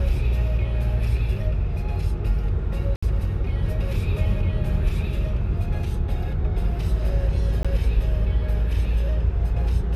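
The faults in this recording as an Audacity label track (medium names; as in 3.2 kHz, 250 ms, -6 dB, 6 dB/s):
2.960000	3.020000	dropout 65 ms
7.630000	7.650000	dropout 16 ms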